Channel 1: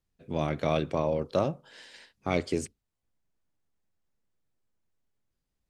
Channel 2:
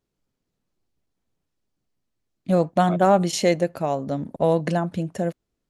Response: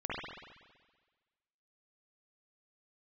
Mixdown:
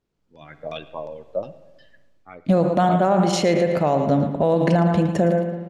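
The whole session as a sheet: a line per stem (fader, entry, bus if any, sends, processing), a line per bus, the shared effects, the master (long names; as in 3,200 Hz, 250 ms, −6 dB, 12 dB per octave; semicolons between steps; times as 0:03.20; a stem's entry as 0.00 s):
−16.0 dB, 0.00 s, send −19.5 dB, echo send −20 dB, spectral dynamics exaggerated over time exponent 2; auto-filter low-pass saw down 2.8 Hz 420–5,600 Hz; low-shelf EQ 340 Hz −10.5 dB
+0.5 dB, 0.00 s, send −12.5 dB, echo send −10 dB, high-shelf EQ 8,900 Hz −7 dB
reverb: on, RT60 1.4 s, pre-delay 46 ms
echo: repeating echo 113 ms, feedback 23%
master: high-shelf EQ 8,100 Hz −8.5 dB; automatic gain control gain up to 15.5 dB; brickwall limiter −9.5 dBFS, peak gain reduction 8.5 dB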